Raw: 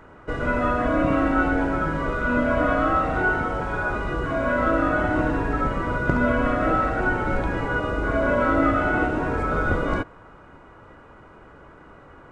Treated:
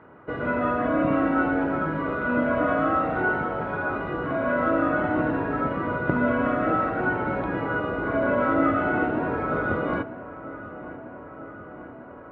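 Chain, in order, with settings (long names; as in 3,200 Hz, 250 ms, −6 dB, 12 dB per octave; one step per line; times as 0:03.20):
high-pass filter 130 Hz 12 dB per octave
high-frequency loss of the air 460 metres
feedback echo with a low-pass in the loop 944 ms, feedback 73%, low-pass 3,300 Hz, level −16 dB
dynamic equaliser 4,400 Hz, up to +4 dB, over −49 dBFS, Q 0.93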